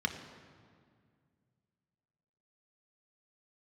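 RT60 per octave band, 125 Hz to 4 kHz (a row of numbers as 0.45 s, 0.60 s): 3.0 s, 2.7 s, 2.1 s, 1.9 s, 1.7 s, 1.4 s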